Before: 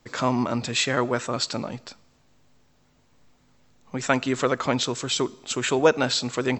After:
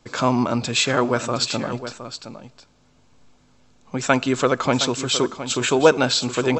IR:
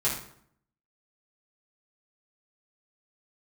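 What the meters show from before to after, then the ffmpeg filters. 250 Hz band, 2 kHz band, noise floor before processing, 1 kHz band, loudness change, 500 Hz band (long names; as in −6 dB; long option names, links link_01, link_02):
+4.0 dB, +3.5 dB, −62 dBFS, +4.0 dB, +4.0 dB, +4.0 dB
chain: -af "aresample=22050,aresample=44100,bandreject=frequency=1900:width=8,aecho=1:1:715:0.266,volume=4dB"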